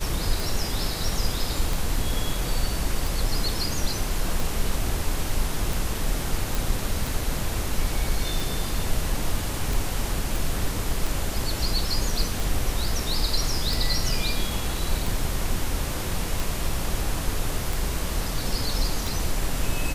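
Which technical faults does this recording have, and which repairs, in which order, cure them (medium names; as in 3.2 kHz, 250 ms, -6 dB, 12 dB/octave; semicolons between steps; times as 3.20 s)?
tick 45 rpm
6.55 s: pop
10.36 s: pop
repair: de-click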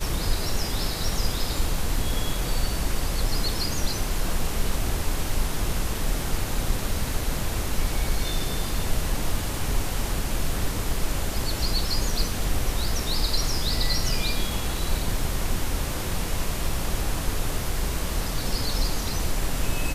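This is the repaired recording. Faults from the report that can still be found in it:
nothing left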